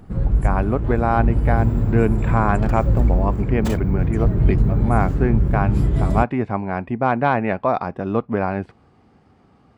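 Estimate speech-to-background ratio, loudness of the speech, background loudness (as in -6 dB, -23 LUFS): -2.0 dB, -23.0 LUFS, -21.0 LUFS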